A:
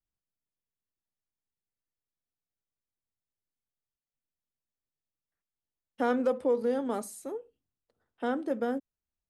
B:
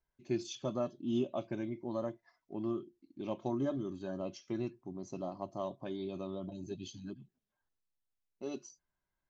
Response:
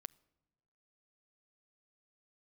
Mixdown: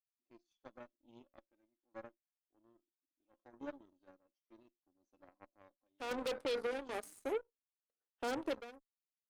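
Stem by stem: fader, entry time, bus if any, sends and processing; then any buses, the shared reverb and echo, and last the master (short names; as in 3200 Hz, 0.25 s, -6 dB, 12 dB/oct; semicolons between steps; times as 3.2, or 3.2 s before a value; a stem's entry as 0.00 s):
-0.5 dB, 0.00 s, no send, soft clip -30 dBFS, distortion -8 dB
-15.0 dB, 0.00 s, no send, tilt -1.5 dB/oct; comb 3.8 ms, depth 75%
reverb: off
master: HPF 300 Hz 24 dB/oct; random-step tremolo 3.6 Hz, depth 75%; added harmonics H 5 -7 dB, 7 -7 dB, 8 -29 dB, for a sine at -30 dBFS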